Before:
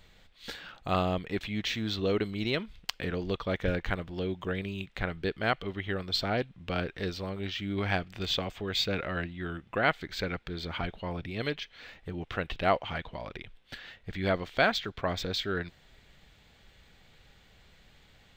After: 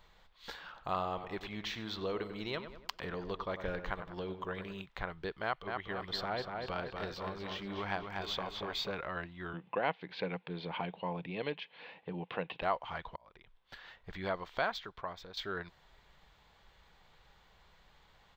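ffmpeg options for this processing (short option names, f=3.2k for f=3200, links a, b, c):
-filter_complex "[0:a]asplit=3[a][b][c];[a]afade=t=out:st=0.73:d=0.02[d];[b]asplit=2[e][f];[f]adelay=96,lowpass=f=2.7k:p=1,volume=-10.5dB,asplit=2[g][h];[h]adelay=96,lowpass=f=2.7k:p=1,volume=0.46,asplit=2[i][j];[j]adelay=96,lowpass=f=2.7k:p=1,volume=0.46,asplit=2[k][l];[l]adelay=96,lowpass=f=2.7k:p=1,volume=0.46,asplit=2[m][n];[n]adelay=96,lowpass=f=2.7k:p=1,volume=0.46[o];[e][g][i][k][m][o]amix=inputs=6:normalize=0,afade=t=in:st=0.73:d=0.02,afade=t=out:st=4.81:d=0.02[p];[c]afade=t=in:st=4.81:d=0.02[q];[d][p][q]amix=inputs=3:normalize=0,asettb=1/sr,asplit=3[r][s][t];[r]atrim=end=5.434[u];[s]atrim=start=5.43:end=8.91,asetpts=PTS-STARTPTS,afade=t=in:d=0.004:c=qsin,afade=t=out:st=3.476:d=0.004:c=qsin,asplit=2[v][w];[w]adelay=241,lowpass=f=4.6k:p=1,volume=-5.5dB,asplit=2[x][y];[y]adelay=241,lowpass=f=4.6k:p=1,volume=0.55,asplit=2[z][aa];[aa]adelay=241,lowpass=f=4.6k:p=1,volume=0.55,asplit=2[ab][ac];[ac]adelay=241,lowpass=f=4.6k:p=1,volume=0.55,asplit=2[ad][ae];[ae]adelay=241,lowpass=f=4.6k:p=1,volume=0.55,asplit=2[af][ag];[ag]adelay=241,lowpass=f=4.6k:p=1,volume=0.55,asplit=2[ah][ai];[ai]adelay=241,lowpass=f=4.6k:p=1,volume=0.55[aj];[v][x][z][ab][ad][af][ah][aj]amix=inputs=8:normalize=0,atrim=end_sample=153468[ak];[t]atrim=start=8.906[al];[u][ak]acrossfade=d=0.004:c1=hsin:c2=qsin[am];[am][al]acrossfade=d=0.004:c1=qsin:c2=hsin,asettb=1/sr,asplit=3[an][ao][ap];[an]atrim=end=9.534[aq];[ao]atrim=start=9.53:end=12.62,asetpts=PTS-STARTPTS,afade=t=in:d=0.004:c=qsin,afade=t=out:st=3.086:d=0.004:c=qsin,highpass=f=120:w=0.5412,highpass=f=120:w=1.3066,equalizer=f=180:t=q:w=4:g=9,equalizer=f=280:t=q:w=4:g=6,equalizer=f=490:t=q:w=4:g=8,equalizer=f=840:t=q:w=4:g=4,equalizer=f=1.3k:t=q:w=4:g=-8,equalizer=f=2.6k:t=q:w=4:g=8,lowpass=f=4.1k:w=0.5412,lowpass=f=4.1k:w=1.3066[ar];[ap]atrim=start=12.616[as];[aq][ar]acrossfade=d=0.004:c1=hsin:c2=qsin[at];[at][as]acrossfade=d=0.004:c1=qsin:c2=hsin,asplit=3[au][av][aw];[au]atrim=end=13.16,asetpts=PTS-STARTPTS,afade=t=out:st=13.156:d=0.004:c=hsin[ax];[av]atrim=start=13.16:end=15.37,asetpts=PTS-STARTPTS,afade=t=in:d=0.83,afade=t=out:st=1.59:d=0.62:c=qua:silence=0.266073[ay];[aw]atrim=start=15.37,asetpts=PTS-STARTPTS,afade=t=in:d=0.004:c=hsin:silence=0.266073[az];[ax][ay][az]concat=n=3:v=0:a=1,equalizer=f=100:t=o:w=0.67:g=-7,equalizer=f=250:t=o:w=0.67:g=-7,equalizer=f=1k:t=o:w=0.67:g=10,equalizer=f=2.5k:t=o:w=0.67:g=-3,equalizer=f=10k:t=o:w=0.67:g=-10,acompressor=threshold=-34dB:ratio=1.5,volume=-4.5dB"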